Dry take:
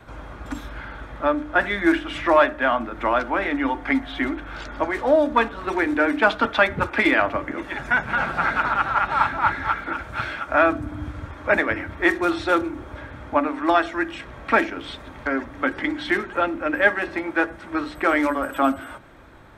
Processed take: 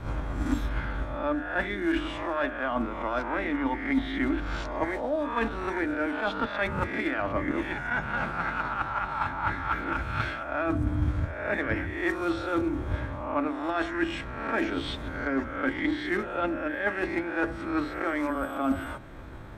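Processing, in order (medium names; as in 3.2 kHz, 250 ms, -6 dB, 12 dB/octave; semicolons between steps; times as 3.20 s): reverse spectral sustain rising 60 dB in 0.60 s; reverse; compression 10:1, threshold -26 dBFS, peak gain reduction 17 dB; reverse; transient shaper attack +6 dB, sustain -1 dB; bass shelf 310 Hz +8 dB; trim -2.5 dB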